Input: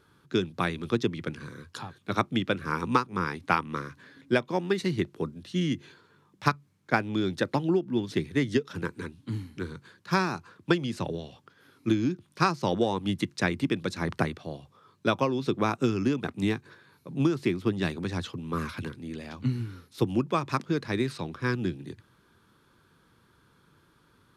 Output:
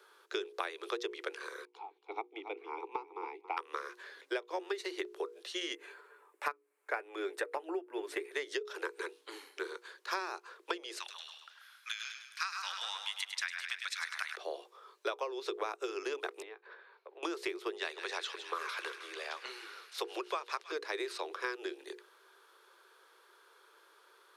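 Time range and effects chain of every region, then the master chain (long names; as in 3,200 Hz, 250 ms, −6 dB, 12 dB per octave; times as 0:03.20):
0:01.65–0:03.57: formant filter u + flat-topped bell 560 Hz +10.5 dB 1.1 octaves + single-tap delay 277 ms −13 dB
0:05.75–0:08.32: flat-topped bell 4,500 Hz −11 dB 1.3 octaves + comb filter 6.9 ms, depth 35%
0:10.98–0:14.36: high-pass filter 1,400 Hz 24 dB per octave + echo with a time of its own for lows and highs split 1,400 Hz, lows 137 ms, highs 102 ms, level −7 dB
0:16.42–0:17.23: high-pass filter 390 Hz 24 dB per octave + downward compressor, threshold −46 dBFS + high-frequency loss of the air 370 metres
0:17.73–0:20.72: meter weighting curve A + delay with a high-pass on its return 159 ms, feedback 75%, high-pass 1,500 Hz, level −12.5 dB
whole clip: Butterworth high-pass 370 Hz 72 dB per octave; mains-hum notches 60/120/180/240/300/360/420/480 Hz; downward compressor 6 to 1, threshold −37 dBFS; level +3 dB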